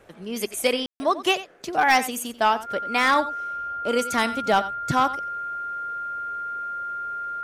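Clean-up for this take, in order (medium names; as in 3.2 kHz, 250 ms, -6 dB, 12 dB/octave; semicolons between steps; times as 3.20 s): clip repair -11 dBFS; band-stop 1.4 kHz, Q 30; room tone fill 0.86–1.00 s; inverse comb 90 ms -15.5 dB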